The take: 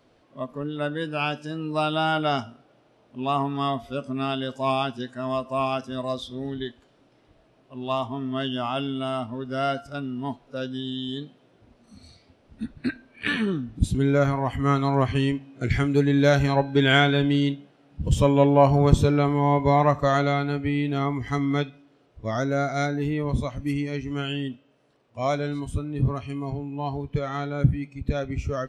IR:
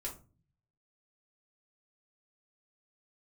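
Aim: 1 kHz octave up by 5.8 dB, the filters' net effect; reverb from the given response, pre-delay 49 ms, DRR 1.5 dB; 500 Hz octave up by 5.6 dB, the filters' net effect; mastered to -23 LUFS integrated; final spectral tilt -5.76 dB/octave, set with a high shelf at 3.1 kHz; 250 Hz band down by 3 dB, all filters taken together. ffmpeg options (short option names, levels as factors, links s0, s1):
-filter_complex "[0:a]equalizer=f=250:t=o:g=-6,equalizer=f=500:t=o:g=6.5,equalizer=f=1000:t=o:g=6.5,highshelf=f=3100:g=-7,asplit=2[s0][s1];[1:a]atrim=start_sample=2205,adelay=49[s2];[s1][s2]afir=irnorm=-1:irlink=0,volume=0.944[s3];[s0][s3]amix=inputs=2:normalize=0,volume=0.631"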